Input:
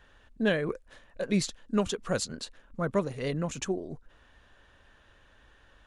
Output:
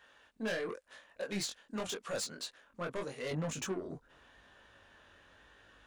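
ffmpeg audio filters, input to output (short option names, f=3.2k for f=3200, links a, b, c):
-af "asetnsamples=n=441:p=0,asendcmd='3.31 highpass f 140',highpass=f=660:p=1,asoftclip=type=tanh:threshold=-33dB,flanger=delay=19:depth=4:speed=0.87,volume=3.5dB"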